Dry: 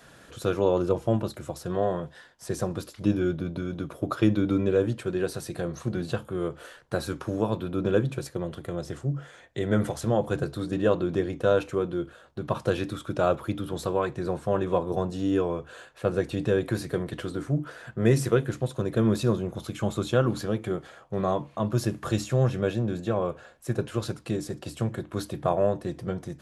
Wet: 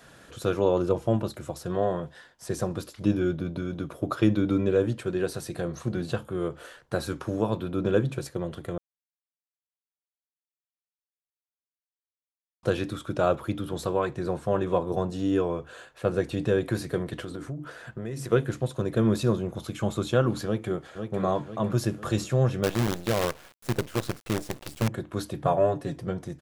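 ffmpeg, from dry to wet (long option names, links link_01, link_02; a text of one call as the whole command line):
ffmpeg -i in.wav -filter_complex "[0:a]asplit=3[link_01][link_02][link_03];[link_01]afade=type=out:start_time=17.22:duration=0.02[link_04];[link_02]acompressor=threshold=-31dB:ratio=6:attack=3.2:release=140:knee=1:detection=peak,afade=type=in:start_time=17.22:duration=0.02,afade=type=out:start_time=18.3:duration=0.02[link_05];[link_03]afade=type=in:start_time=18.3:duration=0.02[link_06];[link_04][link_05][link_06]amix=inputs=3:normalize=0,asplit=2[link_07][link_08];[link_08]afade=type=in:start_time=20.45:duration=0.01,afade=type=out:start_time=21.22:duration=0.01,aecho=0:1:500|1000|1500|2000|2500|3000:0.446684|0.223342|0.111671|0.0558354|0.0279177|0.0139589[link_09];[link_07][link_09]amix=inputs=2:normalize=0,asettb=1/sr,asplit=3[link_10][link_11][link_12];[link_10]atrim=end=22.634[link_13];[link_11]atrim=start=22.63:end=24.88,asetpts=PTS-STARTPTS,afade=type=in:duration=0.004:curve=qsin,afade=type=out:start_time=2.246:duration=0.004:curve=qsin,acrusher=bits=5:dc=4:mix=0:aa=0.000001[link_14];[link_12]atrim=start=24.876[link_15];[link_13][link_14]acrossfade=duration=0.004:curve1=hsin:curve2=qsin[link_16];[link_16][link_15]acrossfade=duration=0.004:curve1=qsin:curve2=hsin,asettb=1/sr,asplit=3[link_17][link_18][link_19];[link_17]atrim=end=25.454[link_20];[link_18]atrim=start=25.45:end=25.96,asetpts=PTS-STARTPTS,afade=type=in:duration=0.004:curve=qsin,afade=type=out:start_time=0.506:duration=0.004:curve=qsin,aecho=1:1:7.1:0.65,atrim=end_sample=22491[link_21];[link_19]atrim=start=25.956[link_22];[link_20][link_21]acrossfade=duration=0.004:curve1=hsin:curve2=qsin[link_23];[link_23][link_22]acrossfade=duration=0.004:curve1=qsin:curve2=hsin,asplit=3[link_24][link_25][link_26];[link_24]atrim=end=8.78,asetpts=PTS-STARTPTS,afade=type=out:start_time=8.776:duration=0.004:curve=hsin[link_27];[link_25]atrim=start=8.78:end=12.63,asetpts=PTS-STARTPTS,volume=0[link_28];[link_26]atrim=start=12.63,asetpts=PTS-STARTPTS,afade=type=in:duration=0.004:curve=hsin[link_29];[link_27][link_28][link_29]concat=n=3:v=0:a=1" out.wav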